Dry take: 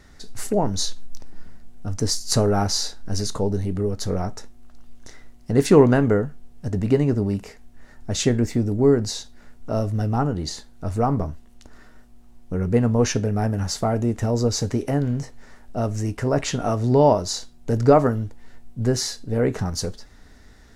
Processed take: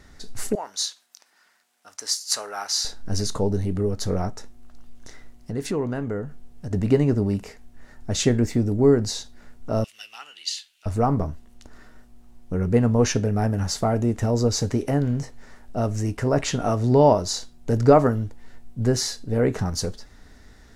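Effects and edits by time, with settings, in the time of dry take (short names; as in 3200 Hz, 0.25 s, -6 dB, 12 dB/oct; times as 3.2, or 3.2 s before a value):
0.55–2.85 HPF 1200 Hz
4.3–6.71 compressor 2:1, threshold -32 dBFS
9.84–10.86 resonant high-pass 2800 Hz, resonance Q 5.2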